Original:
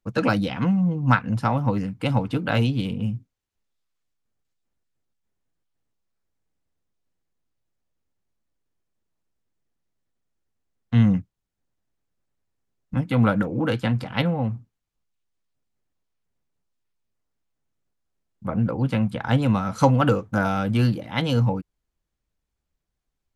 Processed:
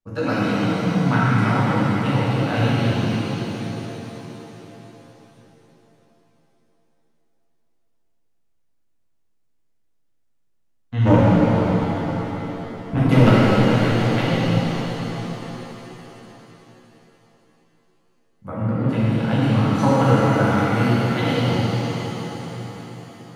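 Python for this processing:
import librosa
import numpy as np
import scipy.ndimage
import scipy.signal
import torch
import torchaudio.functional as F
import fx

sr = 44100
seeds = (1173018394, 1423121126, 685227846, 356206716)

y = fx.fold_sine(x, sr, drive_db=fx.line((11.05, 13.0), (13.28, 7.0)), ceiling_db=-8.5, at=(11.05, 13.28), fade=0.02)
y = fx.rev_shimmer(y, sr, seeds[0], rt60_s=4.0, semitones=7, shimmer_db=-8, drr_db=-9.5)
y = F.gain(torch.from_numpy(y), -7.5).numpy()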